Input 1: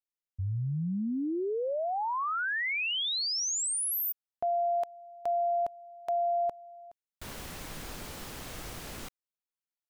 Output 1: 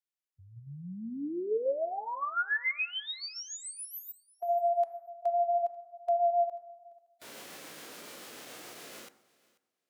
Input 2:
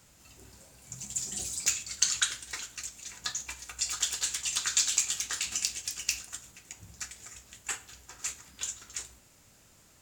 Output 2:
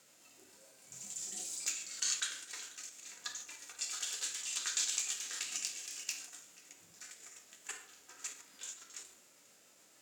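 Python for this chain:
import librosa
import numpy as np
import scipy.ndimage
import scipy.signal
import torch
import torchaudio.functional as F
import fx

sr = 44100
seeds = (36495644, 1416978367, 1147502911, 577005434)

p1 = scipy.signal.sosfilt(scipy.signal.butter(2, 360.0, 'highpass', fs=sr, output='sos'), x)
p2 = fx.rotary(p1, sr, hz=7.0)
p3 = fx.level_steps(p2, sr, step_db=17)
p4 = p2 + (p3 * librosa.db_to_amplitude(0.0))
p5 = fx.rev_plate(p4, sr, seeds[0], rt60_s=1.0, hf_ratio=0.25, predelay_ms=0, drr_db=16.5)
p6 = fx.hpss(p5, sr, part='percussive', gain_db=-13)
y = p6 + fx.echo_feedback(p6, sr, ms=489, feedback_pct=15, wet_db=-23, dry=0)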